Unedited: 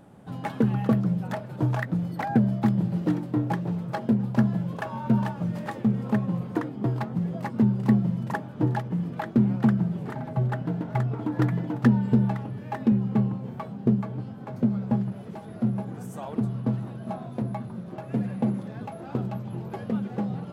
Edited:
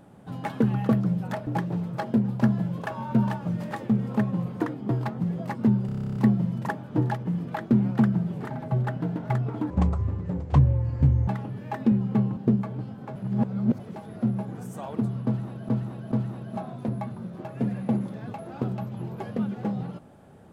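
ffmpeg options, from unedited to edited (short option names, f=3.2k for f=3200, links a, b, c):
-filter_complex "[0:a]asplit=19[a][b][c][d][e][f][g][h][i][j][k][l][m][n][o][p][q][r][s];[a]atrim=end=1.472[t];[b]atrim=start=3.418:end=7.842[u];[c]atrim=start=7.808:end=7.842[v];[d]atrim=start=7.808:end=7.842[w];[e]atrim=start=7.808:end=7.842[x];[f]atrim=start=7.808:end=7.842[y];[g]atrim=start=7.808:end=7.842[z];[h]atrim=start=7.808:end=7.842[aa];[i]atrim=start=7.808:end=7.842[ab];[j]atrim=start=7.808:end=7.842[ac];[k]atrim=start=7.808:end=7.842[ad];[l]atrim=start=7.808:end=11.354[ae];[m]atrim=start=11.35:end=12.28,asetpts=PTS-STARTPTS,asetrate=26019,aresample=44100[af];[n]atrim=start=12.276:end=13.372[ag];[o]atrim=start=13.758:end=14.552[ah];[p]atrim=start=14.548:end=15.192,asetpts=PTS-STARTPTS,areverse[ai];[q]atrim=start=15.188:end=17.082[aj];[r]atrim=start=16.648:end=17.082[ak];[s]atrim=start=16.648[al];[t][u]acrossfade=d=0.004:c1=hsin:c2=hsin[am];[am][v]acrossfade=d=0.004:c1=hsin:c2=hsin[an];[an][w]acrossfade=d=0.004:c1=hsin:c2=hsin[ao];[ao][x]acrossfade=d=0.004:c1=hsin:c2=hsin[ap];[ap][y]acrossfade=d=0.004:c1=hsin:c2=hsin[aq];[aq][z]acrossfade=d=0.004:c1=hsin:c2=hsin[ar];[ar][aa]acrossfade=d=0.004:c1=hsin:c2=hsin[as];[as][ab]acrossfade=d=0.004:c1=hsin:c2=hsin[at];[at][ac]acrossfade=d=0.004:c1=hsin:c2=hsin[au];[au][ad]acrossfade=d=0.004:c1=hsin:c2=hsin[av];[av][ae]acrossfade=d=0.004:c1=hsin:c2=hsin[aw];[aw][af]acrossfade=d=0.004:c1=hsin:c2=hsin[ax];[ax][ag]acrossfade=d=0.004:c1=hsin:c2=hsin[ay];[ay][ah]acrossfade=d=0.004:c1=hsin:c2=hsin[az];[az][ai]acrossfade=d=0.004:c1=hsin:c2=hsin[ba];[ba][aj]acrossfade=d=0.004:c1=hsin:c2=hsin[bb];[bb][ak]acrossfade=d=0.004:c1=hsin:c2=hsin[bc];[bc][al]acrossfade=d=0.004:c1=hsin:c2=hsin"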